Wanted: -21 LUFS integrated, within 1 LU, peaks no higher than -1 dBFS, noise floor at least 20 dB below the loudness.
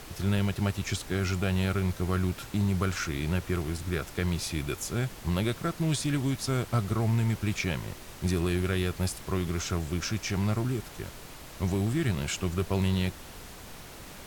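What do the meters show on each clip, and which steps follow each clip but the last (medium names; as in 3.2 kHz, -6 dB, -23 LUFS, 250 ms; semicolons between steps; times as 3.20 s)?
noise floor -46 dBFS; noise floor target -50 dBFS; loudness -30.0 LUFS; peak level -16.0 dBFS; loudness target -21.0 LUFS
-> noise print and reduce 6 dB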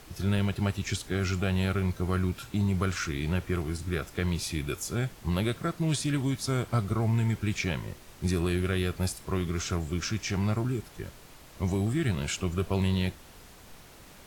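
noise floor -51 dBFS; loudness -30.0 LUFS; peak level -16.0 dBFS; loudness target -21.0 LUFS
-> trim +9 dB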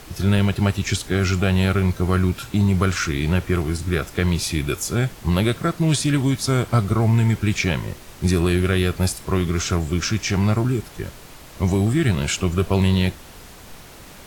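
loudness -21.0 LUFS; peak level -7.0 dBFS; noise floor -42 dBFS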